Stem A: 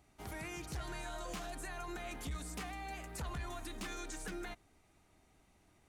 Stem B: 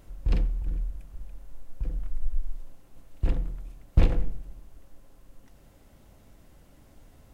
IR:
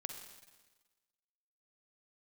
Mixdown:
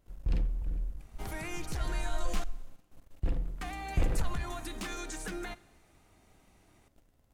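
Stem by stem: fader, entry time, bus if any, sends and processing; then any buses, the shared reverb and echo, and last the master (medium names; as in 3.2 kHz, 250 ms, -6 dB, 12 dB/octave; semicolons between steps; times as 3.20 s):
+3.0 dB, 1.00 s, muted 2.44–3.61 s, send -10 dB, none
-11.5 dB, 0.00 s, no send, waveshaping leveller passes 2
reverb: on, RT60 1.3 s, pre-delay 42 ms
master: none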